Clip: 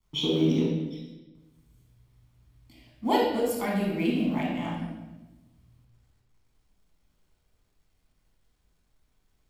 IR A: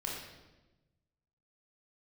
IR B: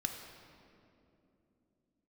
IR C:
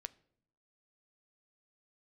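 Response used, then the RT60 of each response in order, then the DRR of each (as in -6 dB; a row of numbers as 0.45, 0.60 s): A; 1.1 s, 2.8 s, not exponential; -3.5, 3.0, 13.5 dB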